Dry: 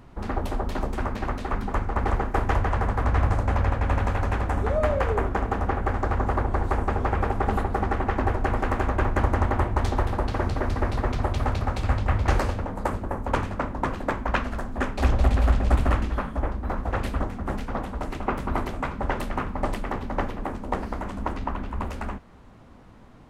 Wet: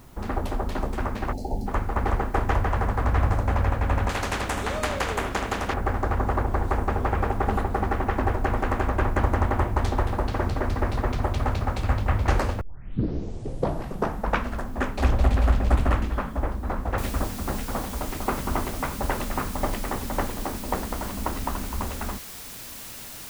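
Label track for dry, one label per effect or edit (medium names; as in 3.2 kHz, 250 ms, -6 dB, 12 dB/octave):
1.330000	1.670000	spectral selection erased 910–4000 Hz
4.090000	5.740000	spectrum-flattening compressor 2:1
12.610000	12.610000	tape start 1.90 s
16.980000	16.980000	noise floor step -59 dB -40 dB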